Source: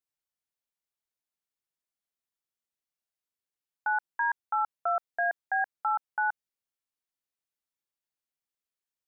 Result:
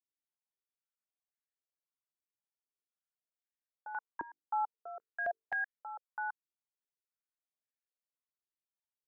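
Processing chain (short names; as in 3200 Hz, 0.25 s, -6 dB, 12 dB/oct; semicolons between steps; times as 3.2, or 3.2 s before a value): 3.92–5.58 notches 50/100/150/200/250/300/350/400/450 Hz; stepped band-pass 3.8 Hz 320–1800 Hz; gain -2 dB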